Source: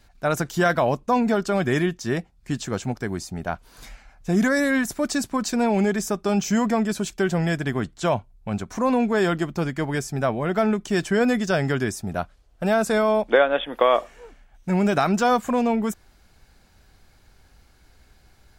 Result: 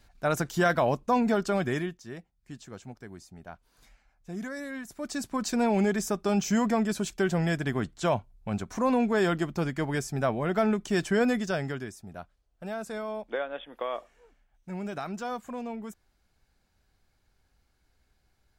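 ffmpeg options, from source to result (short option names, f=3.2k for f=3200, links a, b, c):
-af "volume=8.5dB,afade=t=out:st=1.5:d=0.53:silence=0.237137,afade=t=in:st=4.88:d=0.66:silence=0.237137,afade=t=out:st=11.19:d=0.72:silence=0.281838"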